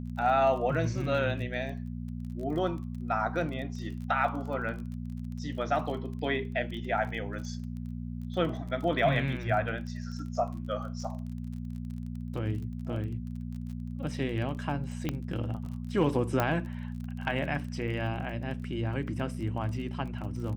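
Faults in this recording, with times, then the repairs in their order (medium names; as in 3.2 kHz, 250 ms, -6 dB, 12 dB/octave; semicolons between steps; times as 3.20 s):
crackle 30 per s -39 dBFS
hum 60 Hz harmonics 4 -37 dBFS
15.09 s: pop -17 dBFS
16.40 s: pop -13 dBFS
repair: de-click; de-hum 60 Hz, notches 4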